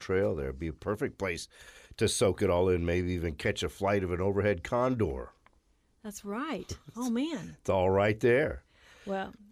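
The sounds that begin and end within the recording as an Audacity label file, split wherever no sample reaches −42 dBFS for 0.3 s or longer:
6.050000	8.580000	sound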